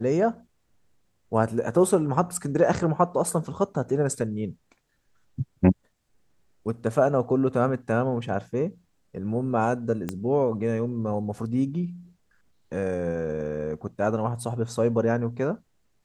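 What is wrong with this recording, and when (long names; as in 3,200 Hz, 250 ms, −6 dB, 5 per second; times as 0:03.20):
0:10.09: click −16 dBFS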